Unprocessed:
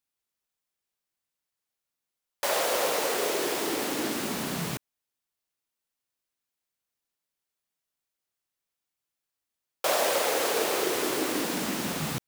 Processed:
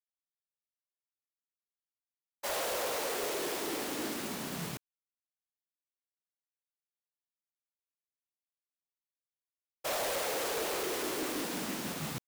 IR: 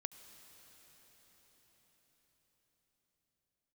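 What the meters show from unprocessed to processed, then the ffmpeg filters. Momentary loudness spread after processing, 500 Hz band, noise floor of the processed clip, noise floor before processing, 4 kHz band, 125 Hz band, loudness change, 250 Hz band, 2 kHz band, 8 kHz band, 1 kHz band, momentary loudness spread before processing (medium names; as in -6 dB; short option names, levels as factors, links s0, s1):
6 LU, -7.5 dB, under -85 dBFS, under -85 dBFS, -7.0 dB, -7.0 dB, -7.0 dB, -7.0 dB, -7.0 dB, -6.5 dB, -7.5 dB, 6 LU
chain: -af "asoftclip=type=hard:threshold=0.0398,acrusher=bits=2:mode=log:mix=0:aa=0.000001,agate=range=0.0224:threshold=0.0447:ratio=3:detection=peak,volume=0.562"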